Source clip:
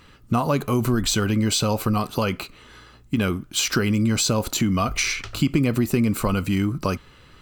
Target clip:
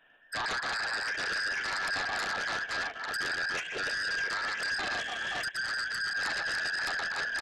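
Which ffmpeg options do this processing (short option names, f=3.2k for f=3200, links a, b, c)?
-filter_complex "[0:a]afftfilt=real='real(if(between(b,1,1012),(2*floor((b-1)/92)+1)*92-b,b),0)':imag='imag(if(between(b,1,1012),(2*floor((b-1)/92)+1)*92-b,b),0)*if(between(b,1,1012),-1,1)':win_size=2048:overlap=0.75,tremolo=f=28:d=0.4,lowshelf=f=190:g=-9,aecho=1:1:120|288|523.2|852.5|1313:0.631|0.398|0.251|0.158|0.1,acrossover=split=180[a][b];[a]aeval=exprs='(mod(631*val(0)+1,2)-1)/631':c=same[c];[c][b]amix=inputs=2:normalize=0,acompressor=threshold=-32dB:ratio=16,aresample=8000,aresample=44100,equalizer=f=330:t=o:w=0.37:g=-5.5,acrossover=split=2600[d][e];[e]acompressor=threshold=-49dB:ratio=4:attack=1:release=60[f];[d][f]amix=inputs=2:normalize=0,aeval=exprs='0.0631*sin(PI/2*3.98*val(0)/0.0631)':c=same,agate=range=-26dB:threshold=-27dB:ratio=16:detection=peak,asetrate=40440,aresample=44100,atempo=1.09051"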